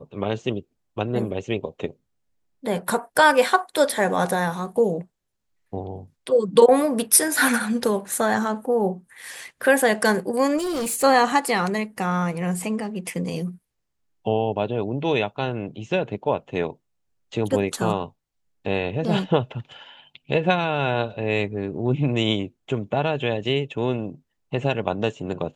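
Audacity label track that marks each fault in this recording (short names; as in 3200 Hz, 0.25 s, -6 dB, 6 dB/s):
10.570000	11.040000	clipped -23 dBFS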